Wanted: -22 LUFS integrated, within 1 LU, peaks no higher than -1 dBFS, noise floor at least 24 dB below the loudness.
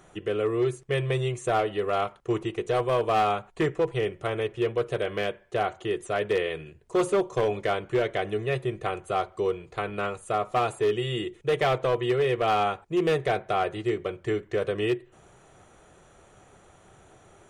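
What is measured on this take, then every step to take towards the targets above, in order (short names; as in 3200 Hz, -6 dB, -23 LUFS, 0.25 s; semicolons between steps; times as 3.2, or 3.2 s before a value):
clipped 1.3%; flat tops at -18.0 dBFS; loudness -27.5 LUFS; peak -18.0 dBFS; loudness target -22.0 LUFS
-> clip repair -18 dBFS; gain +5.5 dB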